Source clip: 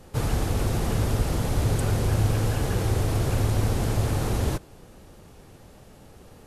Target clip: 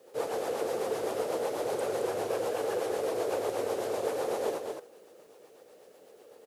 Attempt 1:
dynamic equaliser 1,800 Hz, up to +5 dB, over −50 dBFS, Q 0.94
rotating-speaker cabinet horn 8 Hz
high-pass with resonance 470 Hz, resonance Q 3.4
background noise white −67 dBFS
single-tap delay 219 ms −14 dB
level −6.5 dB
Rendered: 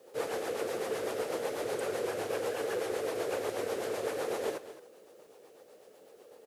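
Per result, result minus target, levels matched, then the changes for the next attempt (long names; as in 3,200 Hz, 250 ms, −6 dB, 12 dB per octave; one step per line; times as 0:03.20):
echo-to-direct −9 dB; 2,000 Hz band +4.5 dB
change: single-tap delay 219 ms −5 dB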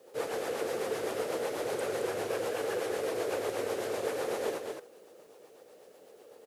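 2,000 Hz band +4.5 dB
change: dynamic equaliser 830 Hz, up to +5 dB, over −50 dBFS, Q 0.94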